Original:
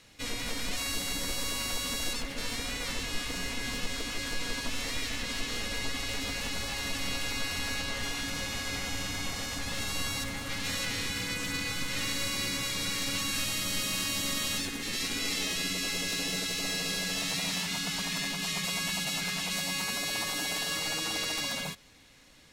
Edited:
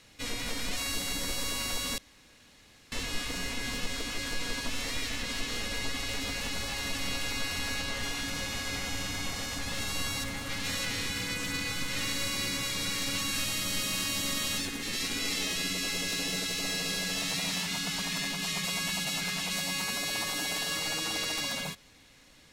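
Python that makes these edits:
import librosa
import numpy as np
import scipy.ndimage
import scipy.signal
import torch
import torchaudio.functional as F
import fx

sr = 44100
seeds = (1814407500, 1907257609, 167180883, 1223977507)

y = fx.edit(x, sr, fx.room_tone_fill(start_s=1.98, length_s=0.94), tone=tone)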